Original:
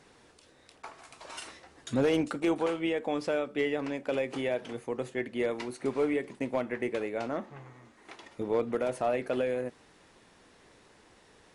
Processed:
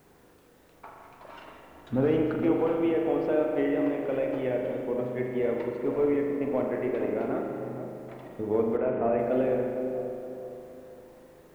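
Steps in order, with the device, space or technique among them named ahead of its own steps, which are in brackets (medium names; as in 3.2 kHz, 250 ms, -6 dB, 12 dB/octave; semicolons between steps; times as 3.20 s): cassette deck with a dirty head (tape spacing loss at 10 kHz 42 dB; wow and flutter; white noise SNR 36 dB); 8.77–9.19 s: steep low-pass 2.9 kHz 48 dB/octave; feedback echo behind a low-pass 463 ms, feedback 41%, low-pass 800 Hz, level -7 dB; spring tank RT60 2.1 s, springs 39 ms, chirp 50 ms, DRR 1 dB; trim +2.5 dB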